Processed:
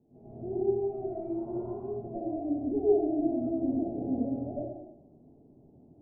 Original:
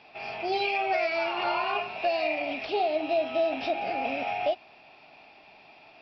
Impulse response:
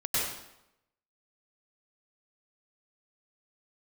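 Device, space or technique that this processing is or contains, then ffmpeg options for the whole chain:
next room: -filter_complex "[0:a]asettb=1/sr,asplit=3[a][b][c];[a]atrim=end=2.144[d];[b]atrim=start=2.14:end=3.12,asetpts=PTS-STARTPTS,afade=t=in:d=0.004:c=qsin,afade=t=out:st=0.976:d=0.004:c=qsin,aecho=1:1:2.7:0.57,atrim=end_sample=43218[e];[c]atrim=start=3.116[f];[d][e]acrossfade=d=0.004:c1=hsin:c2=qsin[g];[g][f]acrossfade=d=0.004:c1=qsin:c2=hsin,lowpass=f=340:w=0.5412,lowpass=f=340:w=1.3066[h];[1:a]atrim=start_sample=2205[i];[h][i]afir=irnorm=-1:irlink=0,volume=2dB"

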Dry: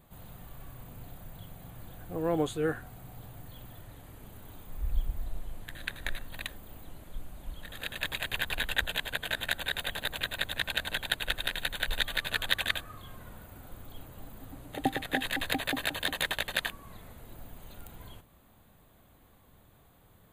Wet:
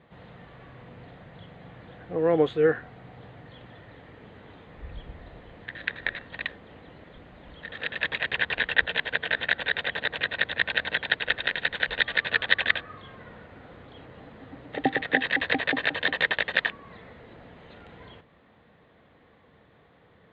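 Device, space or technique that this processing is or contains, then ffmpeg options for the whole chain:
guitar cabinet: -af "highpass=97,equalizer=f=110:t=q:w=4:g=-4,equalizer=f=470:t=q:w=4:g=7,equalizer=f=1.9k:t=q:w=4:g=8,lowpass=f=3.7k:w=0.5412,lowpass=f=3.7k:w=1.3066,volume=3.5dB"

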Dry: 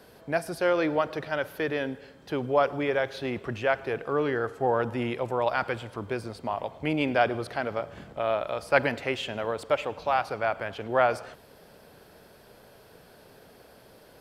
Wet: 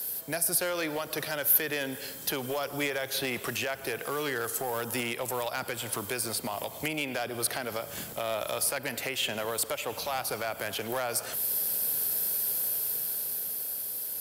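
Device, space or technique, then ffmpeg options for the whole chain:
FM broadcast chain: -filter_complex "[0:a]highpass=63,dynaudnorm=f=140:g=21:m=6.5dB,acrossover=split=120|560|3100[a][b][c][d];[a]acompressor=threshold=-51dB:ratio=4[e];[b]acompressor=threshold=-33dB:ratio=4[f];[c]acompressor=threshold=-31dB:ratio=4[g];[d]acompressor=threshold=-51dB:ratio=4[h];[e][f][g][h]amix=inputs=4:normalize=0,aemphasis=mode=production:type=75fm,alimiter=limit=-21.5dB:level=0:latency=1:release=185,asoftclip=type=hard:threshold=-25dB,lowpass=f=15k:w=0.5412,lowpass=f=15k:w=1.3066,aemphasis=mode=production:type=75fm"

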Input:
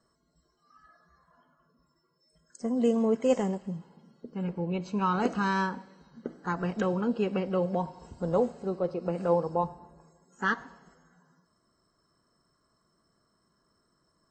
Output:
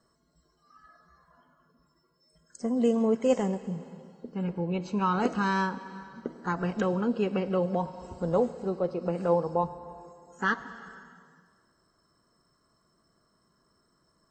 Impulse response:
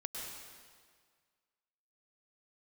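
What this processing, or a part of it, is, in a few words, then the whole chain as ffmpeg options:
ducked reverb: -filter_complex "[0:a]asplit=3[a][b][c];[1:a]atrim=start_sample=2205[d];[b][d]afir=irnorm=-1:irlink=0[e];[c]apad=whole_len=631040[f];[e][f]sidechaincompress=threshold=-34dB:ratio=8:attack=28:release=370,volume=-7.5dB[g];[a][g]amix=inputs=2:normalize=0"

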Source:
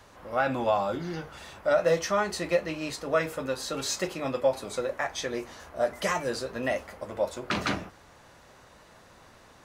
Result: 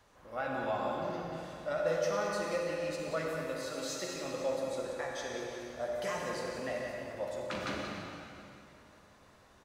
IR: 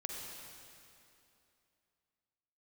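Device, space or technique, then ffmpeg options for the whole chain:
stairwell: -filter_complex "[0:a]asettb=1/sr,asplit=3[a][b][c];[a]atrim=end=3.504[d];[b]atrim=start=3.5:end=4.16,asetpts=PTS-STARTPTS,afade=t=in:d=0.004:c=qsin,afade=t=out:st=0.656:d=0.004:c=qsin,highpass=170[e];[c]atrim=start=4.156[f];[d][e]acrossfade=d=0.004:c1=hsin:c2=qsin[g];[g][f]acrossfade=d=0.004:c1=qsin:c2=hsin[h];[1:a]atrim=start_sample=2205[i];[h][i]afir=irnorm=-1:irlink=0,asplit=2[j][k];[k]adelay=180.8,volume=-7dB,highshelf=f=4k:g=-4.07[l];[j][l]amix=inputs=2:normalize=0,volume=-8dB"

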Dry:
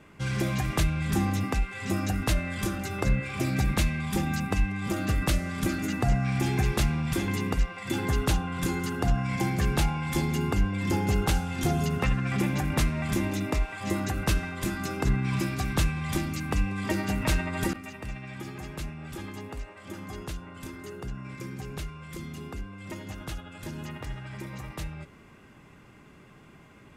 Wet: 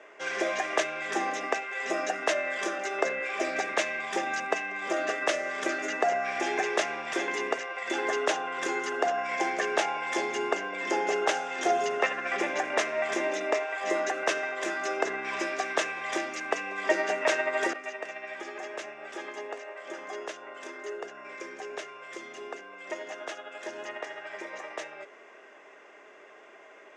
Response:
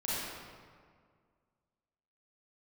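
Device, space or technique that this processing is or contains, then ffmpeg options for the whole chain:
phone speaker on a table: -af "highpass=f=400:w=0.5412,highpass=f=400:w=1.3066,equalizer=f=410:t=q:w=4:g=5,equalizer=f=640:t=q:w=4:g=10,equalizer=f=1.8k:t=q:w=4:g=7,equalizer=f=4.3k:t=q:w=4:g=-8,equalizer=f=6.3k:t=q:w=4:g=3,lowpass=f=6.7k:w=0.5412,lowpass=f=6.7k:w=1.3066,volume=2dB"

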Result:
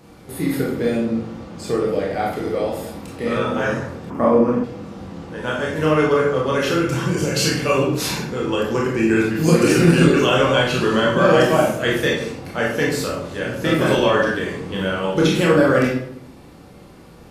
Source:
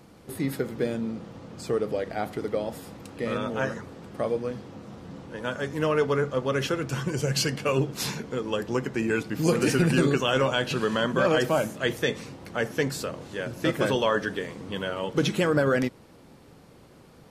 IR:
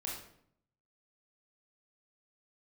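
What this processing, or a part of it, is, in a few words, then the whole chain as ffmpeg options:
bathroom: -filter_complex "[1:a]atrim=start_sample=2205[a];[0:a][a]afir=irnorm=-1:irlink=0,asettb=1/sr,asplit=3[b][c][d];[b]atrim=end=4.104[e];[c]atrim=start=4.1:end=4.64,asetpts=PTS-STARTPTS,afade=t=in:d=0.004:c=qsin,afade=t=out:st=0.536:d=0.004:c=qsin,equalizer=f=250:t=o:w=0.67:g=11,equalizer=f=1k:t=o:w=0.67:g=11,equalizer=f=4k:t=o:w=0.67:g=-11,equalizer=f=10k:t=o:w=0.67:g=-10[f];[d]atrim=start=4.636[g];[e][f]acrossfade=d=0.004:c1=hsin:c2=qsin[h];[h][g]acrossfade=d=0.004:c1=qsin:c2=hsin,volume=7.5dB"

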